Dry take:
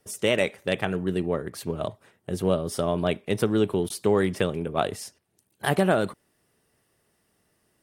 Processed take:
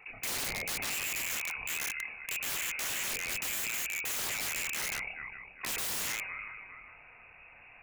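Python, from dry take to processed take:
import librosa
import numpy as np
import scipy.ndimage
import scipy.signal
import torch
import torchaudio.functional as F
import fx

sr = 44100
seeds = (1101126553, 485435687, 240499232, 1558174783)

p1 = fx.freq_invert(x, sr, carrier_hz=2700)
p2 = fx.hum_notches(p1, sr, base_hz=60, count=9)
p3 = p2 + fx.echo_filtered(p2, sr, ms=404, feedback_pct=18, hz=2000.0, wet_db=-18.5, dry=0)
p4 = fx.chorus_voices(p3, sr, voices=6, hz=0.42, base_ms=28, depth_ms=1.0, mix_pct=40)
p5 = fx.peak_eq(p4, sr, hz=470.0, db=5.0, octaves=0.55)
p6 = p5 + 10.0 ** (-9.5 / 20.0) * np.pad(p5, (int(155 * sr / 1000.0), 0))[:len(p5)]
p7 = (np.mod(10.0 ** (27.5 / 20.0) * p6 + 1.0, 2.0) - 1.0) / 10.0 ** (27.5 / 20.0)
p8 = fx.env_flatten(p7, sr, amount_pct=50)
y = p8 * librosa.db_to_amplitude(-2.5)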